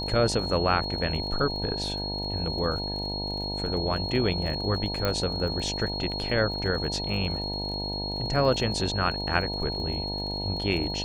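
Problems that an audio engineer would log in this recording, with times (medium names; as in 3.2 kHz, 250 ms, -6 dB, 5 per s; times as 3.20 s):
buzz 50 Hz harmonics 19 -34 dBFS
crackle 34 per s -36 dBFS
whine 4.3 kHz -32 dBFS
5.05 s: pop -12 dBFS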